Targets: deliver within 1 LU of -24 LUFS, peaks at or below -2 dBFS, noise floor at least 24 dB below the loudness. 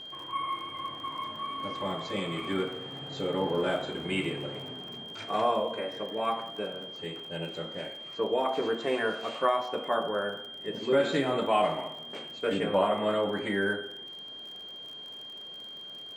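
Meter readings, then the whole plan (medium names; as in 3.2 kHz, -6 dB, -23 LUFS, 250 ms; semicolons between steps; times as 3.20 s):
tick rate 42 per s; steady tone 3.2 kHz; tone level -41 dBFS; loudness -31.5 LUFS; peak level -11.5 dBFS; loudness target -24.0 LUFS
-> de-click; band-stop 3.2 kHz, Q 30; trim +7.5 dB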